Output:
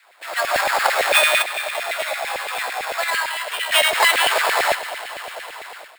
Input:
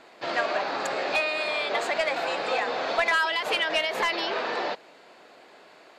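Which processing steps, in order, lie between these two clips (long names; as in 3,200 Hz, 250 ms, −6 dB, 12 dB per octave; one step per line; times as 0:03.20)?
0:01.42–0:03.72: tuned comb filter 63 Hz, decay 0.96 s, harmonics all, mix 90%
dense smooth reverb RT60 4.4 s, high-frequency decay 1×, DRR 10 dB
automatic gain control gain up to 15.5 dB
high-shelf EQ 3,400 Hz +9.5 dB
sample-rate reduction 6,000 Hz, jitter 0%
auto-filter high-pass saw down 8.9 Hz 510–2,300 Hz
level −6.5 dB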